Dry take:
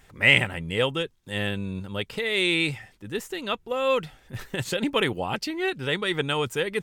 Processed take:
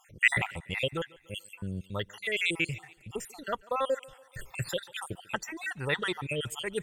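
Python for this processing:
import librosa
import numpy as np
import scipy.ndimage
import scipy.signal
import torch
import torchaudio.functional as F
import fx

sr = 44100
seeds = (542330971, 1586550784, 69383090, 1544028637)

p1 = fx.spec_dropout(x, sr, seeds[0], share_pct=63)
p2 = fx.graphic_eq(p1, sr, hz=(250, 500, 1000, 4000, 8000), db=(-7, -3, 4, -5, 5))
p3 = p2 + fx.echo_thinned(p2, sr, ms=144, feedback_pct=55, hz=180.0, wet_db=-23, dry=0)
y = fx.doppler_dist(p3, sr, depth_ms=0.1)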